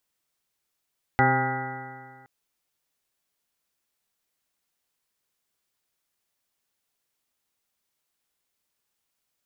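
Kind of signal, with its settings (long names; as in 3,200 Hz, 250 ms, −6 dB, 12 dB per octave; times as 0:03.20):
stiff-string partials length 1.07 s, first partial 129 Hz, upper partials −3/−5/−7.5/−15/4.5/−12/−18/−7/−2.5/−7/−18/−1 dB, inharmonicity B 0.0022, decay 1.86 s, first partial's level −23 dB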